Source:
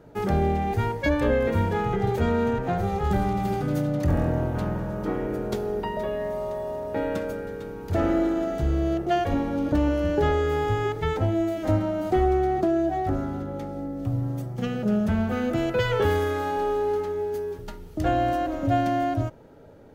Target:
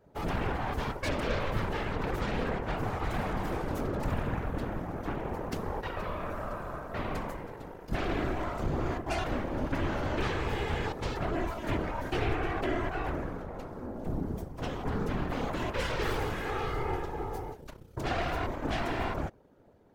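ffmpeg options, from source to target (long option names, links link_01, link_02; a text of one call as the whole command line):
ffmpeg -i in.wav -af "aeval=exprs='0.251*(cos(1*acos(clip(val(0)/0.251,-1,1)))-cos(1*PI/2))+0.0891*(cos(8*acos(clip(val(0)/0.251,-1,1)))-cos(8*PI/2))':channel_layout=same,afftfilt=real='hypot(re,im)*cos(2*PI*random(0))':imag='hypot(re,im)*sin(2*PI*random(1))':win_size=512:overlap=0.75,volume=-6dB" out.wav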